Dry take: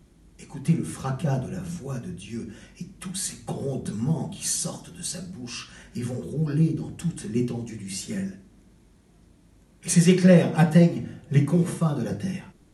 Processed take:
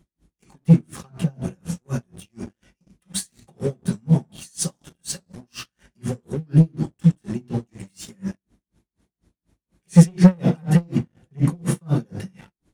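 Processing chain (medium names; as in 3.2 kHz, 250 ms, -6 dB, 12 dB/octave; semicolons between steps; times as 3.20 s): dynamic bell 160 Hz, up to +7 dB, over -32 dBFS, Q 1.1; waveshaping leveller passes 2; logarithmic tremolo 4.1 Hz, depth 38 dB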